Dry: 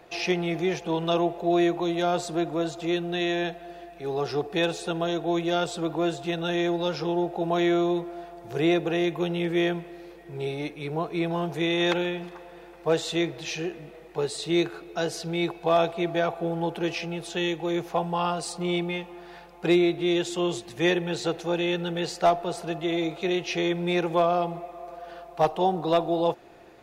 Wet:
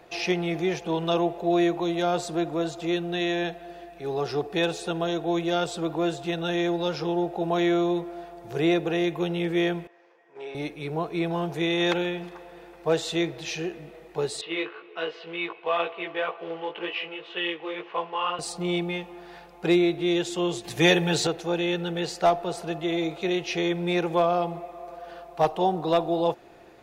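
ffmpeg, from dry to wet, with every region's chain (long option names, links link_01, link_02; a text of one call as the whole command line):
ffmpeg -i in.wav -filter_complex "[0:a]asettb=1/sr,asplit=3[link_01][link_02][link_03];[link_01]atrim=end=9.874[link_04];[link_02]atrim=start=9.87:end=10.55,asetpts=PTS-STARTPTS,afade=type=in:duration=0.004:curve=qsin,afade=type=out:start_time=0.676:duration=0.004:curve=qsin,agate=range=-11dB:threshold=-36dB:ratio=16:release=100:detection=peak,highpass=frequency=280:width=0.5412,highpass=frequency=280:width=1.3066,equalizer=frequency=340:width_type=q:width=4:gain=-8,equalizer=frequency=1000:width_type=q:width=4:gain=8,equalizer=frequency=1700:width_type=q:width=4:gain=6,equalizer=frequency=4100:width_type=q:width=4:gain=-10,lowpass=frequency=6300:width=0.5412,lowpass=frequency=6300:width=1.3066,acompressor=threshold=-41dB:ratio=1.5:attack=3.2:release=140:knee=1:detection=peak[link_05];[link_03]atrim=start=10.546[link_06];[link_04][link_05]acrossfade=duration=0.004:curve1=hsin:curve2=qsin[link_07];[link_07][link_06]acrossfade=duration=0.004:curve1=qsin:curve2=hsin,asettb=1/sr,asplit=3[link_08][link_09][link_10];[link_08]atrim=end=14.414[link_11];[link_09]atrim=start=14.41:end=18.39,asetpts=PTS-STARTPTS,afade=type=in:duration=0.004:curve=qsin,afade=type=out:start_time=3.976:duration=0.004:curve=qsin,flanger=delay=16.5:depth=3.5:speed=2,acrusher=bits=5:mode=log:mix=0:aa=0.000001,highpass=430,equalizer=frequency=460:width_type=q:width=4:gain=4,equalizer=frequency=750:width_type=q:width=4:gain=-7,equalizer=frequency=1100:width_type=q:width=4:gain=8,equalizer=frequency=2000:width_type=q:width=4:gain=5,equalizer=frequency=2900:width_type=q:width=4:gain=10,lowpass=frequency=3300:width=0.5412,lowpass=frequency=3300:width=1.3066[link_12];[link_10]atrim=start=18.386[link_13];[link_11][link_12]acrossfade=duration=0.004:curve1=hsin:curve2=qsin[link_14];[link_14][link_13]acrossfade=duration=0.004:curve1=qsin:curve2=hsin,asettb=1/sr,asplit=3[link_15][link_16][link_17];[link_15]atrim=end=20.644[link_18];[link_16]atrim=start=20.64:end=21.27,asetpts=PTS-STARTPTS,afade=type=in:duration=0.004:curve=qsin,afade=type=out:start_time=0.626:duration=0.004:curve=qsin,highshelf=frequency=4400:gain=5.5,aecho=1:1:7:0.4,atrim=end_sample=27783,acontrast=21[link_19];[link_17]atrim=start=21.266[link_20];[link_18][link_19]acrossfade=duration=0.004:curve1=hsin:curve2=qsin[link_21];[link_21][link_20]acrossfade=duration=0.004:curve1=qsin:curve2=hsin" out.wav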